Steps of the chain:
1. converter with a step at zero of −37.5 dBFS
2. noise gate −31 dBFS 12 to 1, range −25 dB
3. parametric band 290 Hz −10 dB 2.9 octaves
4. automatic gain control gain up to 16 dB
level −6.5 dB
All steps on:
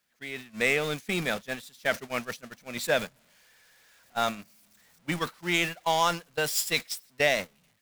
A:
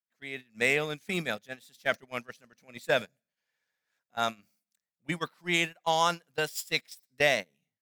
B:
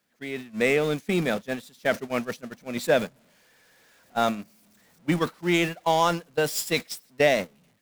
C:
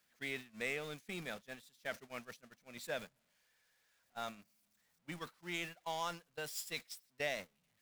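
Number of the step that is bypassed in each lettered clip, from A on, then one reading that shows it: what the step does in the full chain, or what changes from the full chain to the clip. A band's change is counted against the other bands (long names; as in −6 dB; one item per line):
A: 1, distortion level −13 dB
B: 3, 250 Hz band +6.5 dB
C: 4, change in integrated loudness −14.5 LU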